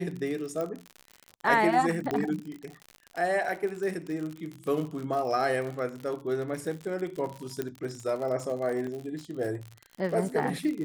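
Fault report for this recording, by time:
surface crackle 63 per second −34 dBFS
0:00.61: click −21 dBFS
0:02.11: click −17 dBFS
0:07.62: click −18 dBFS
0:08.87: drop-out 3.4 ms

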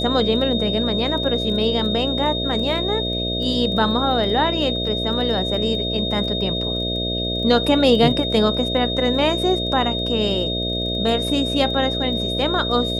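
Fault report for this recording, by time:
mains buzz 60 Hz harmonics 11 −26 dBFS
surface crackle 14 per second −30 dBFS
whistle 3,700 Hz −24 dBFS

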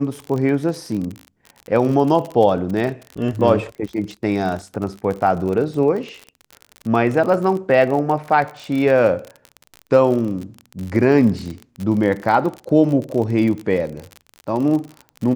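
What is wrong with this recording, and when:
surface crackle 40 per second −25 dBFS

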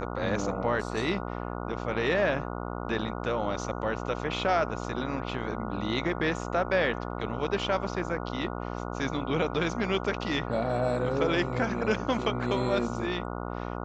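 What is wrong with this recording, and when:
mains buzz 60 Hz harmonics 24 −35 dBFS

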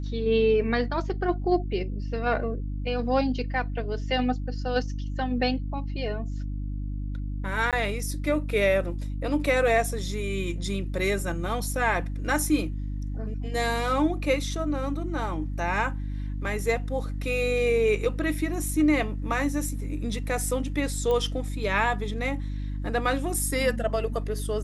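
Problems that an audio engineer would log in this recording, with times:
mains hum 50 Hz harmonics 6 −31 dBFS
0:07.71–0:07.73: drop-out 17 ms
0:21.11: click −17 dBFS

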